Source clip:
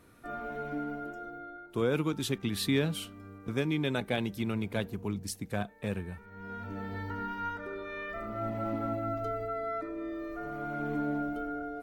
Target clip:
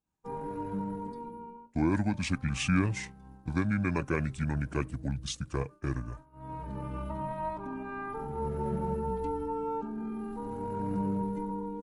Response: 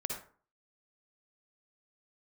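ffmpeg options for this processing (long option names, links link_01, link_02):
-af "agate=range=-33dB:threshold=-42dB:ratio=3:detection=peak,asetrate=29433,aresample=44100,atempo=1.49831,volume=1.5dB"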